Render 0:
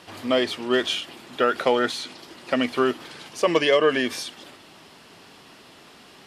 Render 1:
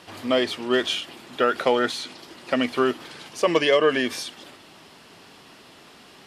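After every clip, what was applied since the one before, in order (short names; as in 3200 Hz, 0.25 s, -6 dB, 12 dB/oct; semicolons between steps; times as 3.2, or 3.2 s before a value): nothing audible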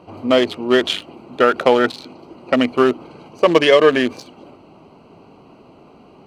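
Wiener smoothing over 25 samples; gain +7.5 dB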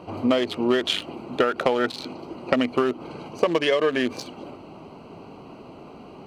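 compressor 16:1, threshold -20 dBFS, peak gain reduction 14 dB; gain +3 dB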